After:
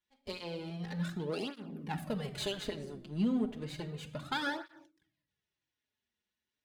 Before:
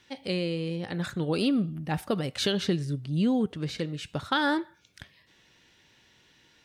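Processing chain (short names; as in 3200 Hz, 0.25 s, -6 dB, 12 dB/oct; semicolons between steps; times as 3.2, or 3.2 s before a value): half-wave gain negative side -12 dB; 1.97–4.41 notch 5500 Hz, Q 7.8; shoebox room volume 3500 m³, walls furnished, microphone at 1.4 m; gate with hold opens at -28 dBFS; tape flanging out of phase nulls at 0.32 Hz, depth 7.5 ms; gain -3 dB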